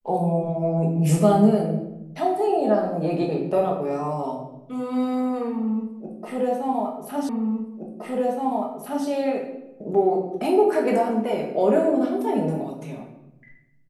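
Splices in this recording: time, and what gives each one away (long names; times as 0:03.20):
0:07.29: the same again, the last 1.77 s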